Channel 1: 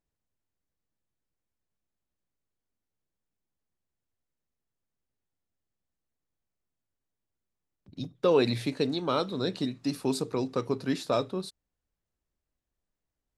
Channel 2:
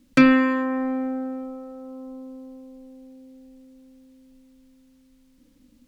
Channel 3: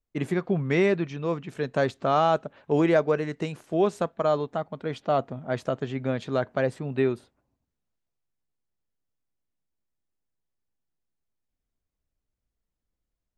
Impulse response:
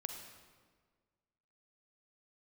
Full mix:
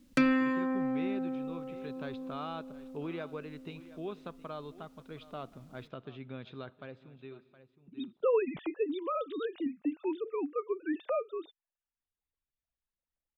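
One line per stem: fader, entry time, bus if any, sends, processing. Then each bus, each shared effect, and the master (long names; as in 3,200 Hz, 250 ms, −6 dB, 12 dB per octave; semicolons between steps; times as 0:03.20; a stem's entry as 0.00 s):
+1.5 dB, 0.00 s, no send, no echo send, three sine waves on the formant tracks
−4.0 dB, 0.00 s, send −11 dB, no echo send, no processing
−7.5 dB, 0.25 s, send −17 dB, echo send −18.5 dB, transistor ladder low-pass 4,100 Hz, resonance 50%; parametric band 390 Hz +2.5 dB; comb filter 0.8 ms, depth 36%; automatic ducking −22 dB, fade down 1.35 s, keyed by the first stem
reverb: on, RT60 1.6 s, pre-delay 38 ms
echo: single-tap delay 717 ms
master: downward compressor 1.5 to 1, threshold −39 dBFS, peak gain reduction 9.5 dB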